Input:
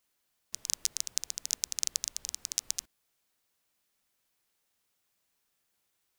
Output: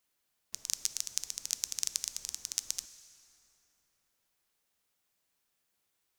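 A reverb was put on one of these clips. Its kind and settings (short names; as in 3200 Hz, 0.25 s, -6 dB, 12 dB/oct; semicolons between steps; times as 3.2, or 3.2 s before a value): plate-style reverb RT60 3.9 s, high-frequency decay 0.55×, DRR 11.5 dB; gain -2 dB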